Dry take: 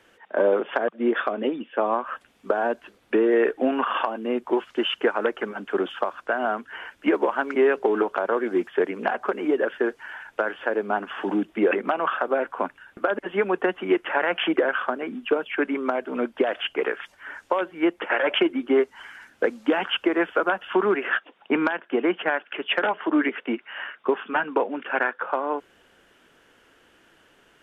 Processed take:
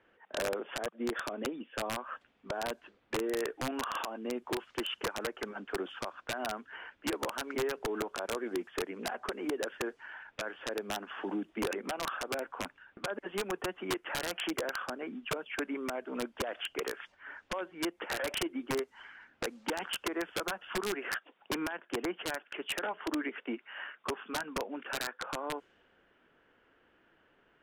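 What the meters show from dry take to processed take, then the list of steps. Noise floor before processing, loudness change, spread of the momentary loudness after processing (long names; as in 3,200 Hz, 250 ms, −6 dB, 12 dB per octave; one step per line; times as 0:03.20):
−60 dBFS, −12.5 dB, 6 LU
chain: downward compressor 2.5 to 1, threshold −24 dBFS, peak gain reduction 6.5 dB
wrap-around overflow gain 17.5 dB
low-pass that shuts in the quiet parts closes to 2,300 Hz, open at −23.5 dBFS
level −8.5 dB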